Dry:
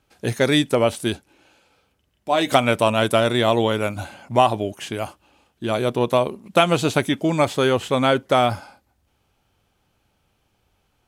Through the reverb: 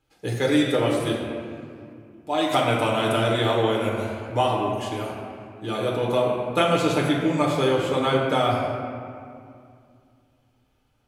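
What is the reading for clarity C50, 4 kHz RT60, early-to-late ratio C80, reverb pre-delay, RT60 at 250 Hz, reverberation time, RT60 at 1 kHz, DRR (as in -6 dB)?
1.0 dB, 1.4 s, 2.5 dB, 6 ms, 3.0 s, 2.3 s, 2.3 s, -3.0 dB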